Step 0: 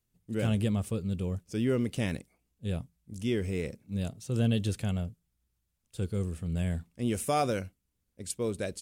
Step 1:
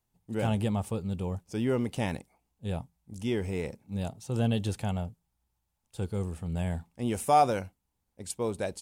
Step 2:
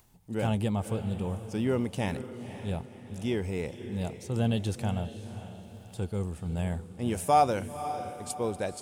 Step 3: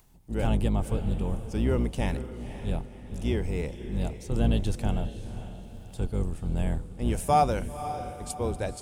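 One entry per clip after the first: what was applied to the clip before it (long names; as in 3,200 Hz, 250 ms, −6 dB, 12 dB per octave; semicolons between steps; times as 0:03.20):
parametric band 850 Hz +14.5 dB 0.59 octaves; level −1 dB
upward compression, threshold −49 dBFS; feedback delay with all-pass diffusion 521 ms, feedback 42%, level −11 dB
sub-octave generator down 2 octaves, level +3 dB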